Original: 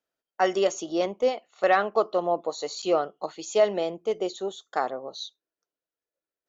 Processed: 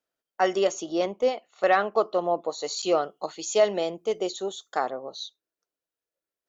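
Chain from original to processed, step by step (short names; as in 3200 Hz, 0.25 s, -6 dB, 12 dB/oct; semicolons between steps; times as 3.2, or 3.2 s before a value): 2.64–4.77 high shelf 4100 Hz +7.5 dB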